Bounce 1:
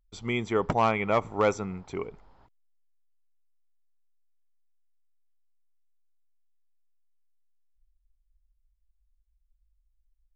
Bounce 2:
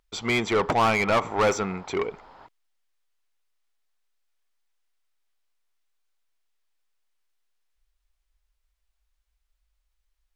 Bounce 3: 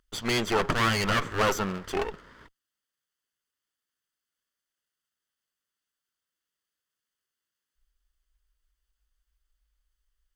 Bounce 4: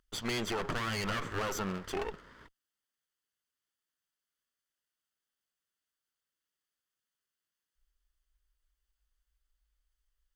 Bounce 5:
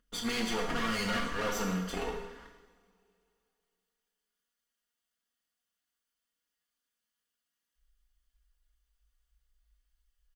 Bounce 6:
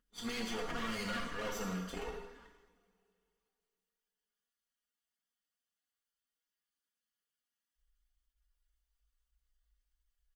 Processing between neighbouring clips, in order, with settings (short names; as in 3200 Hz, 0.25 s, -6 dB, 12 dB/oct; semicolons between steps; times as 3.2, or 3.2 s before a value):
overdrive pedal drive 21 dB, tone 4100 Hz, clips at -14.5 dBFS
minimum comb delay 0.63 ms
limiter -22 dBFS, peak gain reduction 9.5 dB; gain -3.5 dB
comb 4.2 ms, depth 71%; two-slope reverb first 0.9 s, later 2.8 s, from -21 dB, DRR 0 dB; gain -2.5 dB
bin magnitudes rounded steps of 15 dB; attack slew limiter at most 390 dB/s; gain -6 dB